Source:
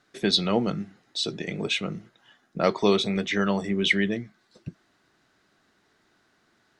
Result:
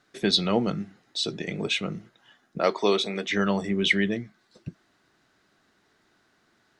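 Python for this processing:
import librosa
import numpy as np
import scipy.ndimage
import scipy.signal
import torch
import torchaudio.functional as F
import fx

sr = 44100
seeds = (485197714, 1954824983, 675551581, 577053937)

y = fx.highpass(x, sr, hz=290.0, slope=12, at=(2.58, 3.3))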